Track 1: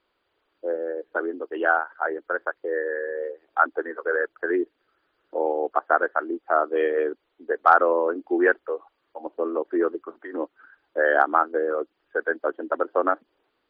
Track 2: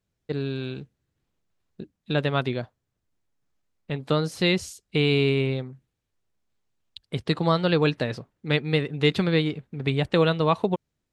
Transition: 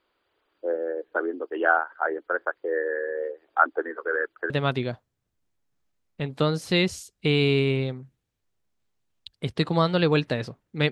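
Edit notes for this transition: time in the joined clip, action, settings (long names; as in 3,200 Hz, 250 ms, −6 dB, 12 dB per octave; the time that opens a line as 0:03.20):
track 1
0:03.82–0:04.50: dynamic equaliser 660 Hz, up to −7 dB, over −39 dBFS, Q 1.5
0:04.50: continue with track 2 from 0:02.20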